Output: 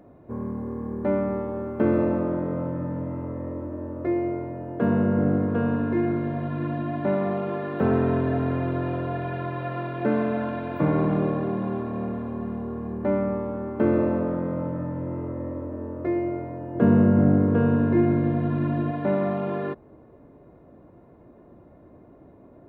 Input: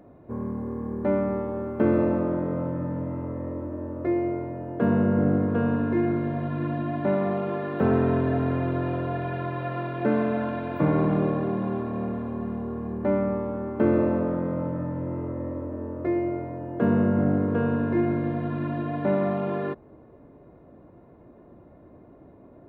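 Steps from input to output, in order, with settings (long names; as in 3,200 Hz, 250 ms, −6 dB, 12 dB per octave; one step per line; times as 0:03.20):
0:16.75–0:18.91: low-shelf EQ 360 Hz +6 dB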